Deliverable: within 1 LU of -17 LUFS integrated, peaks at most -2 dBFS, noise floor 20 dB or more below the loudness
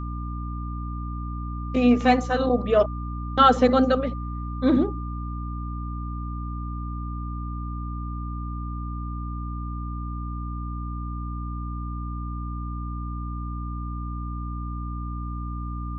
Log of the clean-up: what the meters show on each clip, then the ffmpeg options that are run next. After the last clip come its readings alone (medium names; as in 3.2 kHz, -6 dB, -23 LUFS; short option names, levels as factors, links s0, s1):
hum 60 Hz; highest harmonic 300 Hz; hum level -29 dBFS; steady tone 1.2 kHz; tone level -38 dBFS; loudness -27.0 LUFS; peak level -4.5 dBFS; loudness target -17.0 LUFS
-> -af "bandreject=f=60:t=h:w=6,bandreject=f=120:t=h:w=6,bandreject=f=180:t=h:w=6,bandreject=f=240:t=h:w=6,bandreject=f=300:t=h:w=6"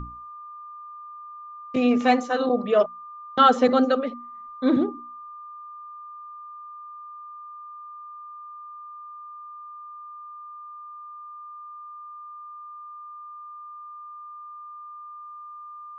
hum not found; steady tone 1.2 kHz; tone level -38 dBFS
-> -af "bandreject=f=1200:w=30"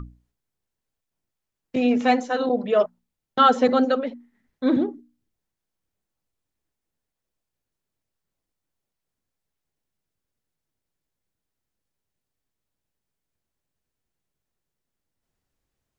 steady tone not found; loudness -21.5 LUFS; peak level -5.5 dBFS; loudness target -17.0 LUFS
-> -af "volume=1.68,alimiter=limit=0.794:level=0:latency=1"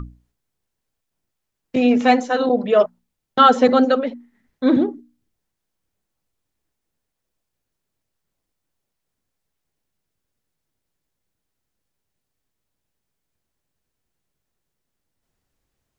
loudness -17.5 LUFS; peak level -2.0 dBFS; noise floor -80 dBFS